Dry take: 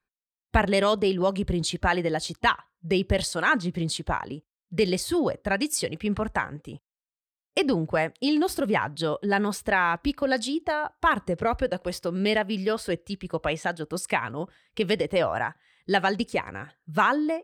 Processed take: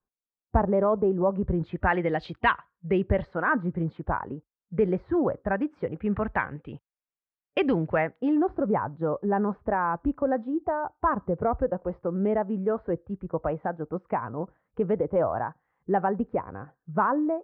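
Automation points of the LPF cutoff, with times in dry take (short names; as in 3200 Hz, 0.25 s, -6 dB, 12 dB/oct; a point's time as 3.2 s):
LPF 24 dB/oct
1.27 s 1100 Hz
2.24 s 2900 Hz
3.45 s 1500 Hz
5.96 s 1500 Hz
6.37 s 2600 Hz
7.87 s 2600 Hz
8.54 s 1200 Hz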